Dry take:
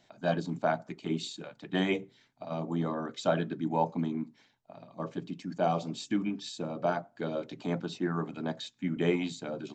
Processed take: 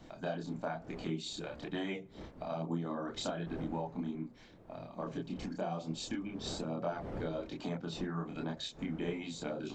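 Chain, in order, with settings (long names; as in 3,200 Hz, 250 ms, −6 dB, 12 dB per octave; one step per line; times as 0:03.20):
wind on the microphone 410 Hz −48 dBFS
downward compressor 6 to 1, threshold −38 dBFS, peak gain reduction 15.5 dB
multi-voice chorus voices 2, 1.1 Hz, delay 28 ms, depth 4 ms
level +6 dB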